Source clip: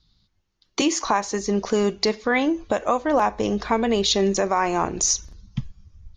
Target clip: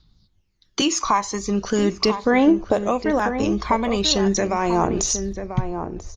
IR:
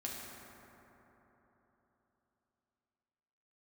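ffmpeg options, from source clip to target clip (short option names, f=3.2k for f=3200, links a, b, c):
-filter_complex "[0:a]aphaser=in_gain=1:out_gain=1:delay=1:decay=0.55:speed=0.4:type=triangular,asplit=2[a][b];[b]adelay=991.3,volume=-8dB,highshelf=f=4k:g=-22.3[c];[a][c]amix=inputs=2:normalize=0"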